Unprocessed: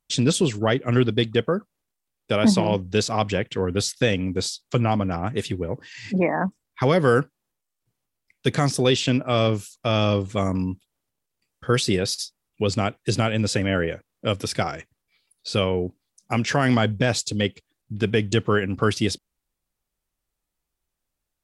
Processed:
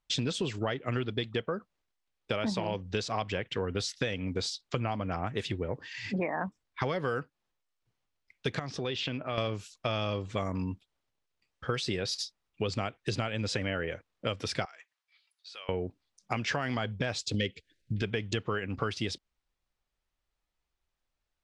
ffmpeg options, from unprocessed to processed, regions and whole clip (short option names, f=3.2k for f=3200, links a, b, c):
-filter_complex "[0:a]asettb=1/sr,asplit=3[a][b][c];[a]atrim=end=8.594[d];[b]atrim=start=8.59:end=9.38,asetpts=PTS-STARTPTS,afade=t=in:d=0.004:c=qsin,afade=t=out:st=0.786:d=0.004:c=qsin,lowpass=4.3k,acompressor=threshold=-29dB:ratio=2.5:attack=3.2:release=140:knee=1:detection=peak[e];[c]atrim=start=9.376[f];[d][e]acrossfade=d=0.004:c1=hsin:c2=qsin[g];[g][f]acrossfade=d=0.004:c1=qsin:c2=hsin,asettb=1/sr,asplit=3[h][i][j];[h]atrim=end=14.654[k];[i]atrim=start=14.65:end=15.69,asetpts=PTS-STARTPTS,afade=t=in:d=0.004:c=qsin,afade=t=out:st=1.036:d=0.004:c=qsin,highpass=1k,acompressor=threshold=-54dB:ratio=2:attack=3.2:release=140:knee=1:detection=peak[l];[j]atrim=start=15.686[m];[k][l]acrossfade=d=0.004:c1=hsin:c2=qsin[n];[n][m]acrossfade=d=0.004:c1=qsin:c2=hsin,asettb=1/sr,asplit=3[o][p][q];[o]atrim=end=17.344[r];[p]atrim=start=17.34:end=18.02,asetpts=PTS-STARTPTS,afade=t=in:d=0.004:c=qsin,afade=t=out:st=0.676:d=0.004:c=qsin,acontrast=84,asuperstop=centerf=950:order=8:qfactor=0.94[s];[q]atrim=start=18.016[t];[r][s]acrossfade=d=0.004:c1=hsin:c2=qsin[u];[u][t]acrossfade=d=0.004:c1=qsin:c2=hsin,lowpass=4.9k,equalizer=f=210:w=0.5:g=-6,acompressor=threshold=-28dB:ratio=6"